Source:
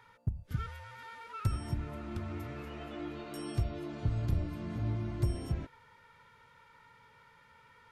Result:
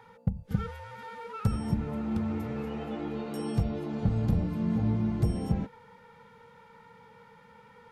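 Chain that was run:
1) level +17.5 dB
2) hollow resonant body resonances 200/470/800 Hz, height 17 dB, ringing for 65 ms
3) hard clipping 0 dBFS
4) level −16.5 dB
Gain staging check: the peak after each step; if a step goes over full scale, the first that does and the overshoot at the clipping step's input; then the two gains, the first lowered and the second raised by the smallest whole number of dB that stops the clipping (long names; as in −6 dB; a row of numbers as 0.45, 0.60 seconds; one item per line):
−2.0, +5.5, 0.0, −16.5 dBFS
step 2, 5.5 dB
step 1 +11.5 dB, step 4 −10.5 dB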